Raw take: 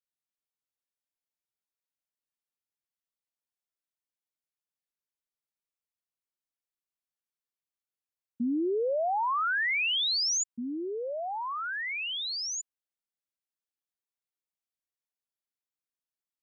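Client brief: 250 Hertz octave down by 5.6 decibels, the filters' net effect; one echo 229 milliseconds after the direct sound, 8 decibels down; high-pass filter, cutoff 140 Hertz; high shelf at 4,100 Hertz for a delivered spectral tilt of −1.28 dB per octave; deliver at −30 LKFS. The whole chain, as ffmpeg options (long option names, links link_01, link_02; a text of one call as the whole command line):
ffmpeg -i in.wav -af "highpass=140,equalizer=frequency=250:width_type=o:gain=-7,highshelf=frequency=4100:gain=7,aecho=1:1:229:0.398,volume=-4dB" out.wav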